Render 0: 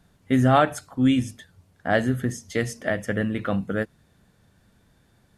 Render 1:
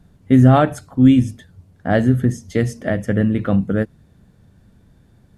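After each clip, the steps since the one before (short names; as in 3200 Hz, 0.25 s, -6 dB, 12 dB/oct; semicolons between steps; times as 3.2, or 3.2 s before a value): low shelf 490 Hz +12 dB; gain -1 dB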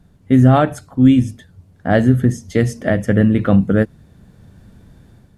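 AGC gain up to 7 dB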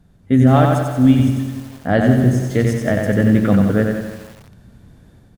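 on a send: feedback echo 92 ms, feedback 49%, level -4 dB; on the sum: lo-fi delay 0.162 s, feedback 55%, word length 5-bit, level -11 dB; gain -2 dB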